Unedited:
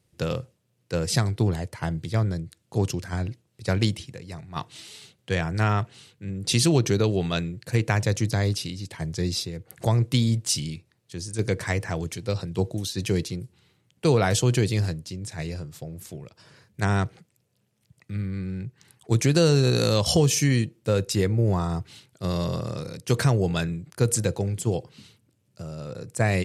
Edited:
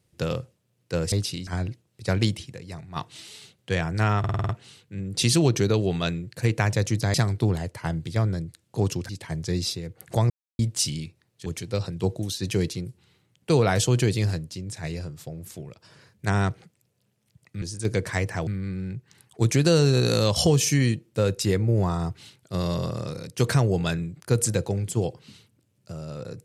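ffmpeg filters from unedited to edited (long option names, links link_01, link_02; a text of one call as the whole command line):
ffmpeg -i in.wav -filter_complex "[0:a]asplit=16[link_01][link_02][link_03][link_04][link_05][link_06][link_07][link_08][link_09][link_10][link_11][link_12][link_13][link_14][link_15][link_16];[link_01]atrim=end=1.122[link_17];[link_02]atrim=start=8.438:end=8.792[link_18];[link_03]atrim=start=3.068:end=5.842[link_19];[link_04]atrim=start=5.788:end=5.842[link_20];[link_05]atrim=start=5.788:end=5.842[link_21];[link_06]atrim=start=5.788:end=5.842[link_22];[link_07]atrim=start=5.788:end=5.842[link_23];[link_08]atrim=start=5.788:end=5.842[link_24];[link_09]atrim=start=5.788:end=8.442[link_25];[link_10]atrim=start=1.118:end=3.072[link_26];[link_11]atrim=start=8.788:end=10,asetpts=PTS-STARTPTS,afade=type=out:start_time=1.208:duration=0.004:curve=hsin[link_27];[link_12]atrim=start=10:end=10.29,asetpts=PTS-STARTPTS,volume=0[link_28];[link_13]atrim=start=10.29:end=11.162,asetpts=PTS-STARTPTS,afade=type=in:duration=0.004:curve=hsin[link_29];[link_14]atrim=start=12.008:end=18.172[link_30];[link_15]atrim=start=11.158:end=12.012[link_31];[link_16]atrim=start=18.168[link_32];[link_17][link_18]acrossfade=duration=0.004:curve1=hsin:curve2=hsin[link_33];[link_33][link_19]acrossfade=duration=0.004:curve1=hsin:curve2=hsin[link_34];[link_34][link_20]acrossfade=duration=0.004:curve1=hsin:curve2=hsin[link_35];[link_35][link_21]acrossfade=duration=0.004:curve1=hsin:curve2=hsin[link_36];[link_36][link_22]acrossfade=duration=0.004:curve1=hsin:curve2=hsin[link_37];[link_37][link_23]acrossfade=duration=0.004:curve1=hsin:curve2=hsin[link_38];[link_38][link_24]acrossfade=duration=0.004:curve1=hsin:curve2=hsin[link_39];[link_39][link_25]acrossfade=duration=0.004:curve1=hsin:curve2=hsin[link_40];[link_40][link_26]acrossfade=duration=0.004:curve1=hsin:curve2=hsin[link_41];[link_27][link_28][link_29]concat=n=3:v=0:a=1[link_42];[link_41][link_42]acrossfade=duration=0.004:curve1=hsin:curve2=hsin[link_43];[link_43][link_30]acrossfade=duration=0.004:curve1=hsin:curve2=hsin[link_44];[link_44][link_31]acrossfade=duration=0.004:curve1=hsin:curve2=hsin[link_45];[link_45][link_32]acrossfade=duration=0.004:curve1=hsin:curve2=hsin" out.wav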